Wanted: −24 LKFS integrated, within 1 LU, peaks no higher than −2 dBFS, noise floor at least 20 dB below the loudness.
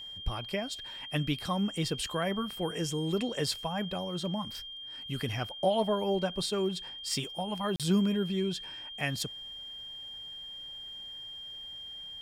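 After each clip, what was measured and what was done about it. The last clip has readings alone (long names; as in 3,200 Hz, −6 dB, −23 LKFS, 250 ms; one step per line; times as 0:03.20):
number of dropouts 1; longest dropout 37 ms; interfering tone 3,200 Hz; level of the tone −41 dBFS; integrated loudness −33.5 LKFS; sample peak −15.5 dBFS; target loudness −24.0 LKFS
→ repair the gap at 0:07.76, 37 ms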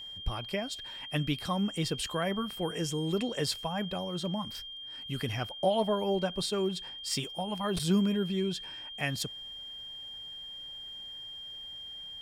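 number of dropouts 0; interfering tone 3,200 Hz; level of the tone −41 dBFS
→ notch filter 3,200 Hz, Q 30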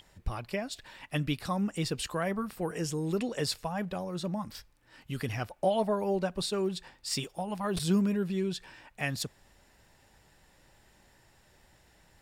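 interfering tone none found; integrated loudness −33.0 LKFS; sample peak −16.0 dBFS; target loudness −24.0 LKFS
→ level +9 dB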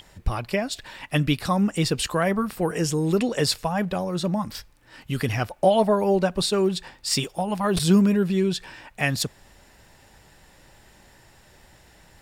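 integrated loudness −24.0 LKFS; sample peak −7.0 dBFS; background noise floor −55 dBFS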